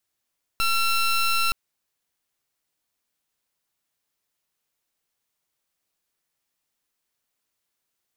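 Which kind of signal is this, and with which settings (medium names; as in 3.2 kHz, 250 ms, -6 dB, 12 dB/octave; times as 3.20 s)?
pulse 1.35 kHz, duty 18% -21.5 dBFS 0.92 s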